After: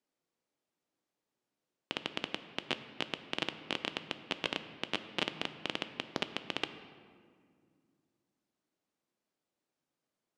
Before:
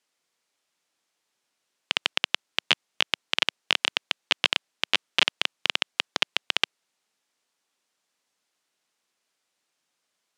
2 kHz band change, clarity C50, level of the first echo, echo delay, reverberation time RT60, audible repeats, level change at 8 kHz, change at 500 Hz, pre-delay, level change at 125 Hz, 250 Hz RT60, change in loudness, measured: -13.0 dB, 11.5 dB, no echo, no echo, 2.1 s, no echo, -15.0 dB, -2.5 dB, 3 ms, +2.0 dB, 3.1 s, -12.5 dB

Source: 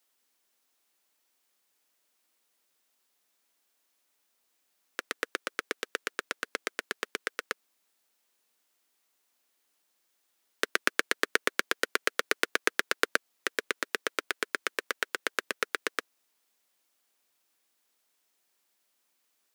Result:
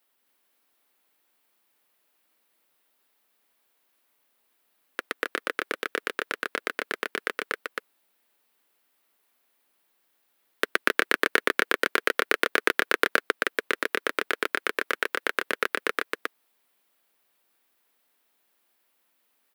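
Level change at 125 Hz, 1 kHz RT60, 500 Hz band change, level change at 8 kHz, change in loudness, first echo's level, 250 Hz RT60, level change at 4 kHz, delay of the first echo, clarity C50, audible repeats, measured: no reading, no reverb, +6.0 dB, -2.0 dB, +4.5 dB, -3.0 dB, no reverb, +2.5 dB, 267 ms, no reverb, 1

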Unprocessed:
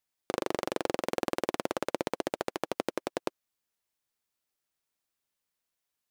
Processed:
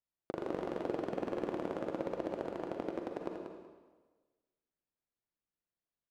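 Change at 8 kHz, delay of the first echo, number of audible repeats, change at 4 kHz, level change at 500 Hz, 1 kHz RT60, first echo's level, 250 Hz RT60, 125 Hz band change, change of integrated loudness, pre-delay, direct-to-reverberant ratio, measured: under -20 dB, 188 ms, 1, -16.0 dB, -4.0 dB, 1.3 s, -7.0 dB, 1.3 s, -1.5 dB, -5.0 dB, 39 ms, 0.5 dB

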